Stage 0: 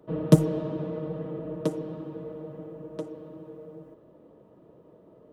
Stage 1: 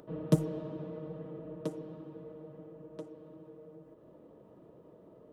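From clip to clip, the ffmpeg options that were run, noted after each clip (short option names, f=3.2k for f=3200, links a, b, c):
-af "acompressor=mode=upward:threshold=-38dB:ratio=2.5,volume=-9dB"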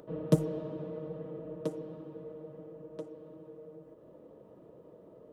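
-af "equalizer=f=510:t=o:w=0.51:g=4.5"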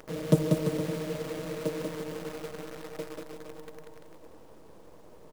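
-filter_complex "[0:a]acrusher=bits=8:dc=4:mix=0:aa=0.000001,asplit=2[a][b];[b]aecho=0:1:190|342|463.6|560.9|638.7:0.631|0.398|0.251|0.158|0.1[c];[a][c]amix=inputs=2:normalize=0,volume=2.5dB"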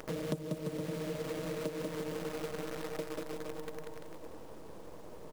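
-af "acompressor=threshold=-38dB:ratio=6,volume=3.5dB"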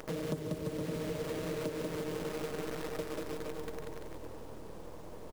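-filter_complex "[0:a]asoftclip=type=tanh:threshold=-26dB,asplit=2[a][b];[b]asplit=8[c][d][e][f][g][h][i][j];[c]adelay=142,afreqshift=-40,volume=-11dB[k];[d]adelay=284,afreqshift=-80,volume=-14.9dB[l];[e]adelay=426,afreqshift=-120,volume=-18.8dB[m];[f]adelay=568,afreqshift=-160,volume=-22.6dB[n];[g]adelay=710,afreqshift=-200,volume=-26.5dB[o];[h]adelay=852,afreqshift=-240,volume=-30.4dB[p];[i]adelay=994,afreqshift=-280,volume=-34.3dB[q];[j]adelay=1136,afreqshift=-320,volume=-38.1dB[r];[k][l][m][n][o][p][q][r]amix=inputs=8:normalize=0[s];[a][s]amix=inputs=2:normalize=0,volume=1dB"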